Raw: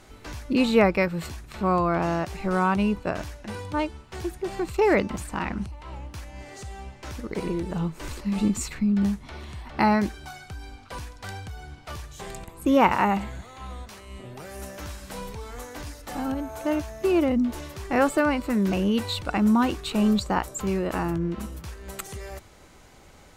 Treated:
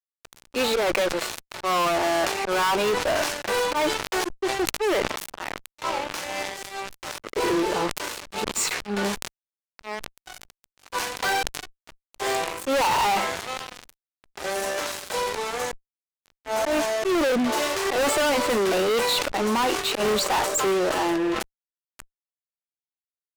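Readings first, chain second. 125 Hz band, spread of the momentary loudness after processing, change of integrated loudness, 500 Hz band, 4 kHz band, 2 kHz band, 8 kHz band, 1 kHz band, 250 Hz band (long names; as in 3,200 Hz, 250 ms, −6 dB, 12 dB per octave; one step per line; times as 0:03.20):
−10.5 dB, 13 LU, +0.5 dB, +3.0 dB, +9.5 dB, +4.5 dB, +10.0 dB, +2.5 dB, −5.5 dB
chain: sample-and-hold tremolo 1.4 Hz, depth 95%
low-pass filter 9,100 Hz 12 dB per octave
volume swells 136 ms
high-pass filter 390 Hz 24 dB per octave
harmonic and percussive parts rebalanced harmonic +7 dB
fuzz pedal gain 39 dB, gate −44 dBFS
level that may fall only so fast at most 57 dB per second
level −7 dB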